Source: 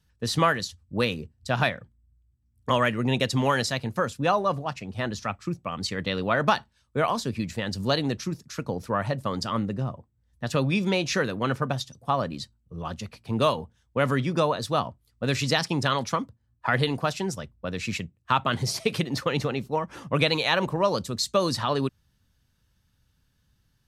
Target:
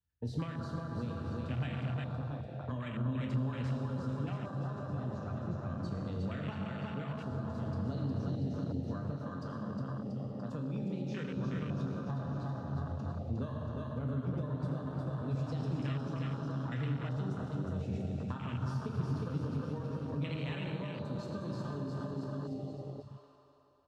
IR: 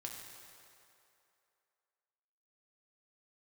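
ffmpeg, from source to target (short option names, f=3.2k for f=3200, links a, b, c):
-filter_complex "[0:a]aemphasis=mode=reproduction:type=50kf,aecho=1:1:360|684|975.6|1238|1474:0.631|0.398|0.251|0.158|0.1[a];[1:a]atrim=start_sample=2205,asetrate=33516,aresample=44100[b];[a][b]afir=irnorm=-1:irlink=0,afwtdn=0.0398,acompressor=threshold=-25dB:ratio=6,asettb=1/sr,asplit=3[c][d][e];[c]atrim=end=9.124[f];[d]atrim=start=9.12:end=11.36,asetpts=PTS-STARTPTS,afade=t=in:d=0.004:c=qsin,afade=t=out:st=2.236:d=0.004:c=qsin,equalizer=f=75:t=o:w=1.4:g=-12.5[g];[e]atrim=start=11.356[h];[f][g]acrossfade=d=0.004:c1=hsin:c2=qsin[i];[i][h]acrossfade=d=0.004:c1=qsin:c2=hsin,acrossover=split=260|3000[j][k][l];[k]acompressor=threshold=-43dB:ratio=10[m];[j][m][l]amix=inputs=3:normalize=0,volume=-2dB"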